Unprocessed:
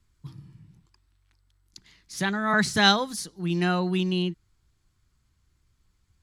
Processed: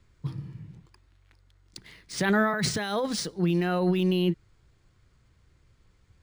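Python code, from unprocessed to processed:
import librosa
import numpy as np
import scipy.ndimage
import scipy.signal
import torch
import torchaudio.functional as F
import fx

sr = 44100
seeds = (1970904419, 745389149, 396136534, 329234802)

y = fx.graphic_eq(x, sr, hz=(125, 500, 2000), db=(4, 10, 4))
y = fx.over_compress(y, sr, threshold_db=-25.0, ratio=-1.0)
y = np.interp(np.arange(len(y)), np.arange(len(y))[::3], y[::3])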